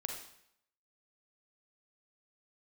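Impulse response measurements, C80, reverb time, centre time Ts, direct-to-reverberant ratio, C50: 7.5 dB, 0.70 s, 33 ms, 2.0 dB, 4.0 dB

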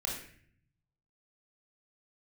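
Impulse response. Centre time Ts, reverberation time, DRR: 42 ms, 0.55 s, -2.5 dB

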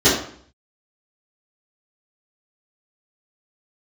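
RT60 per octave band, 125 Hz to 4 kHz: 0.65 s, 0.60 s, 0.55 s, 0.55 s, 0.55 s, 0.45 s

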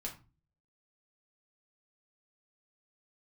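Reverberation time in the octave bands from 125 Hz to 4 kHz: 0.65 s, 0.50 s, 0.30 s, 0.30 s, 0.25 s, 0.25 s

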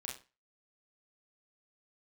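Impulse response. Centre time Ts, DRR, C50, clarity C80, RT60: 29 ms, -2.0 dB, 7.0 dB, 14.0 dB, 0.30 s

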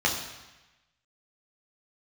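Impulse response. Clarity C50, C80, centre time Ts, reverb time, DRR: 6.0 dB, 8.0 dB, 35 ms, 1.1 s, -2.0 dB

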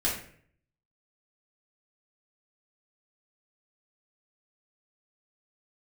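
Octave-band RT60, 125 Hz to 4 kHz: 0.80 s, 0.65 s, 0.60 s, 0.50 s, 0.55 s, 0.40 s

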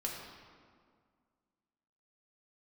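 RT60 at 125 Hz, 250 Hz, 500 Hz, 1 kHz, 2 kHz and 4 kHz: 2.1 s, 2.3 s, 2.0 s, 1.9 s, 1.5 s, 1.2 s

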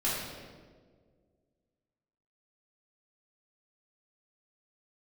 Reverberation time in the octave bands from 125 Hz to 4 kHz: 2.1 s, 2.2 s, 2.1 s, 1.4 s, 1.2 s, 1.0 s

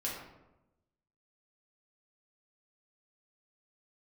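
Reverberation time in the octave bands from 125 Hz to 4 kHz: 1.2 s, 1.1 s, 1.0 s, 0.90 s, 0.70 s, 0.55 s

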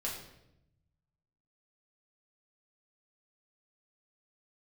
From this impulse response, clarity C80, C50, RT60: 7.5 dB, 4.5 dB, 0.85 s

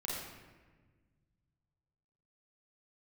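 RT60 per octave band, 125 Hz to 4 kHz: 3.0 s, 2.1 s, 1.5 s, 1.3 s, 1.3 s, 0.90 s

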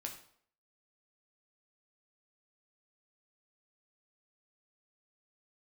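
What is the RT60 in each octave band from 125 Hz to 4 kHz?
0.50 s, 0.55 s, 0.60 s, 0.60 s, 0.50 s, 0.50 s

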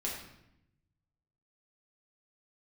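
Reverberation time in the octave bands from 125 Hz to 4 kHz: 1.7 s, 1.2 s, 0.85 s, 0.75 s, 0.75 s, 0.65 s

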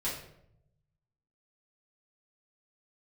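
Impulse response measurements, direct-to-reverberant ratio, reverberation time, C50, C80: -9.5 dB, 0.75 s, 4.0 dB, 8.0 dB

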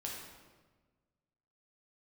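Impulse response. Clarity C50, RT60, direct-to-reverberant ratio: 1.0 dB, 1.4 s, -3.0 dB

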